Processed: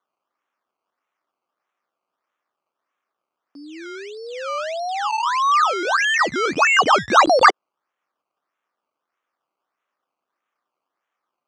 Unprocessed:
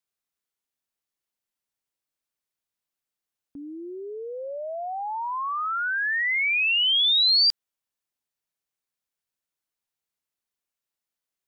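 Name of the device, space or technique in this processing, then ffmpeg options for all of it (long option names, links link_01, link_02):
circuit-bent sampling toy: -af "acrusher=samples=17:mix=1:aa=0.000001:lfo=1:lforange=17:lforate=1.6,highpass=400,equalizer=frequency=440:width_type=q:width=4:gain=-4,equalizer=frequency=1200:width_type=q:width=4:gain=8,equalizer=frequency=4000:width_type=q:width=4:gain=-5,lowpass=frequency=6000:width=0.5412,lowpass=frequency=6000:width=1.3066,volume=6.5dB"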